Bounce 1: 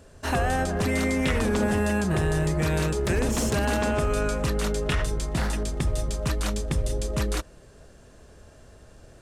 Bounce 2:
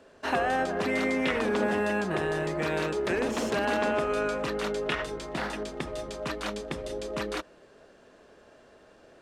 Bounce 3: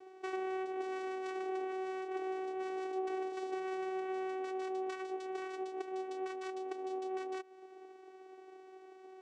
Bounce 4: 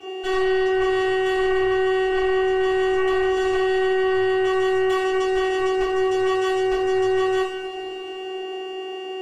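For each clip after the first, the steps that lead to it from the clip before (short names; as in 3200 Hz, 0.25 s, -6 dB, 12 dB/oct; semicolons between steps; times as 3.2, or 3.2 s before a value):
three-band isolator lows -21 dB, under 220 Hz, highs -14 dB, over 4500 Hz
compressor 4:1, threshold -39 dBFS, peak gain reduction 14 dB; vocoder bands 4, saw 377 Hz; gain +2 dB
sine folder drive 9 dB, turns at -27 dBFS; whine 2800 Hz -51 dBFS; two-slope reverb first 0.49 s, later 4 s, from -18 dB, DRR -9 dB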